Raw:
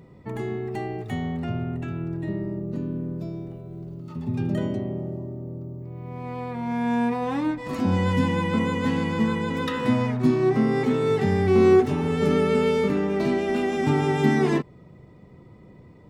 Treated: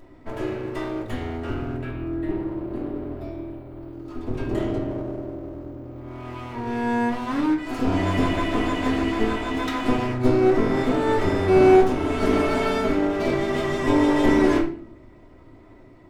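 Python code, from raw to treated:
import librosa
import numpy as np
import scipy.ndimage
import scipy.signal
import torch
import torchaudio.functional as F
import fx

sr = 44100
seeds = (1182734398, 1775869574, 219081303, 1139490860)

y = fx.lower_of_two(x, sr, delay_ms=3.1)
y = fx.peak_eq(y, sr, hz=6300.0, db=-12.5, octaves=0.54, at=(1.82, 3.93))
y = fx.room_shoebox(y, sr, seeds[0], volume_m3=50.0, walls='mixed', distance_m=0.51)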